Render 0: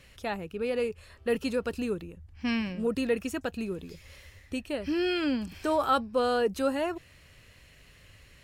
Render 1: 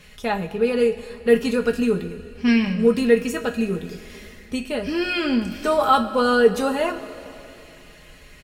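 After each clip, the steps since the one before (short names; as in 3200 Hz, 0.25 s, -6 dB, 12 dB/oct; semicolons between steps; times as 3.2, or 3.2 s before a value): comb 4.8 ms, depth 47%; two-slope reverb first 0.21 s, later 3 s, from -18 dB, DRR 3 dB; gain +6 dB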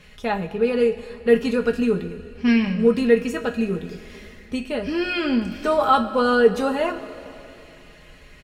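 high shelf 6300 Hz -9.5 dB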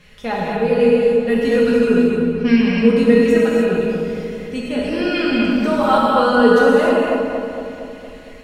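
darkening echo 0.231 s, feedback 61%, low-pass 1900 Hz, level -5 dB; non-linear reverb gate 0.33 s flat, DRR -3.5 dB; gain -1 dB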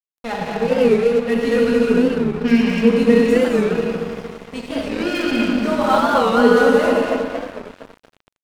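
crossover distortion -29 dBFS; record warp 45 rpm, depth 160 cents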